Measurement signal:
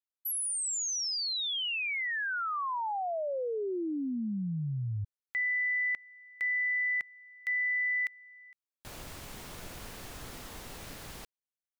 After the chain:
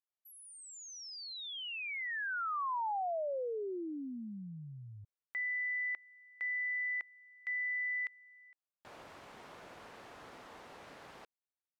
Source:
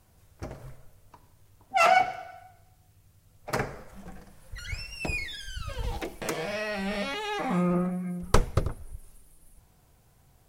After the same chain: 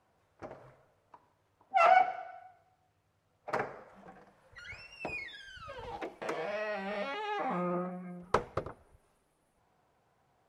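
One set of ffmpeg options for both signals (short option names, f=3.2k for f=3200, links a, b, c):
-af "bandpass=f=860:t=q:w=0.64:csg=0,volume=-2dB"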